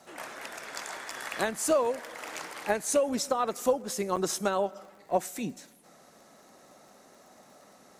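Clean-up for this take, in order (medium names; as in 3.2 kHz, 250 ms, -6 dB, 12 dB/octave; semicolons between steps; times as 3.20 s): de-click; interpolate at 4.16 s, 6.8 ms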